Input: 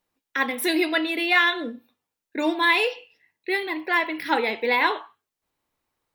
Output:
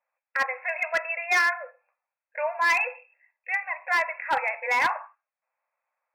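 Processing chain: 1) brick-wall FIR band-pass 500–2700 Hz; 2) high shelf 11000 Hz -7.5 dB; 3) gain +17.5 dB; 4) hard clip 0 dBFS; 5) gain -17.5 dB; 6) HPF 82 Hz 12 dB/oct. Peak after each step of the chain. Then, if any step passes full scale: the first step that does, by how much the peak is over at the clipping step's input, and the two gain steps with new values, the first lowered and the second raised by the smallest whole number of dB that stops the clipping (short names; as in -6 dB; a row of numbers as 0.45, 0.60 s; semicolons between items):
-8.5, -8.5, +9.0, 0.0, -17.5, -15.5 dBFS; step 3, 9.0 dB; step 3 +8.5 dB, step 5 -8.5 dB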